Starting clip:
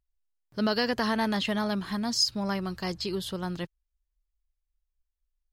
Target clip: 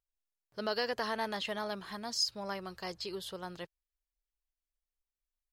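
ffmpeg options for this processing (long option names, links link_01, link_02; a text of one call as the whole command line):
ffmpeg -i in.wav -af "lowshelf=frequency=350:width_type=q:width=1.5:gain=-7,volume=-6.5dB" out.wav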